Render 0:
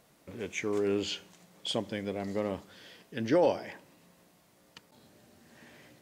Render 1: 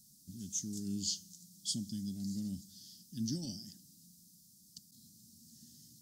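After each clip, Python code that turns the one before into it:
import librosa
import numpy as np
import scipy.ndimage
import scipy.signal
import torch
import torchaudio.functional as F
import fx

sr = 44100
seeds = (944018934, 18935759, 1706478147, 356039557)

y = scipy.signal.sosfilt(scipy.signal.ellip(3, 1.0, 40, [210.0, 5100.0], 'bandstop', fs=sr, output='sos'), x)
y = fx.low_shelf(y, sr, hz=280.0, db=-11.5)
y = y * 10.0 ** (8.5 / 20.0)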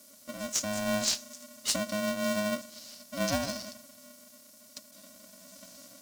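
y = x + 0.57 * np.pad(x, (int(5.7 * sr / 1000.0), 0))[:len(x)]
y = y * np.sign(np.sin(2.0 * np.pi * 420.0 * np.arange(len(y)) / sr))
y = y * 10.0 ** (6.0 / 20.0)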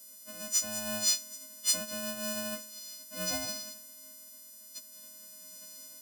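y = fx.freq_snap(x, sr, grid_st=3)
y = y * 10.0 ** (-8.5 / 20.0)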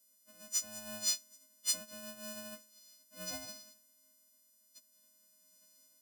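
y = fx.upward_expand(x, sr, threshold_db=-50.0, expansion=1.5)
y = y * 10.0 ** (-4.5 / 20.0)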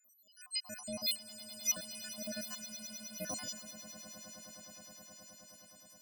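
y = fx.spec_dropout(x, sr, seeds[0], share_pct=76)
y = fx.echo_swell(y, sr, ms=105, loudest=8, wet_db=-17)
y = y * 10.0 ** (7.0 / 20.0)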